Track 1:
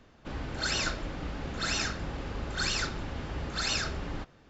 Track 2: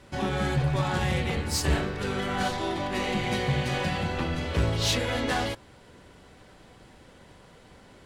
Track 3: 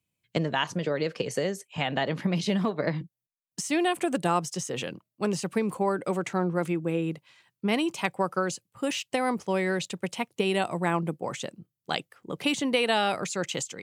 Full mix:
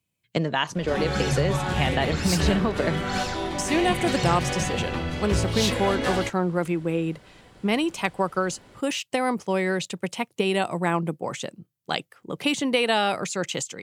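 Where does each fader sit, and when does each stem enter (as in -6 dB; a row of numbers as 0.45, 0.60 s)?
-5.0, +0.5, +2.5 dB; 0.50, 0.75, 0.00 s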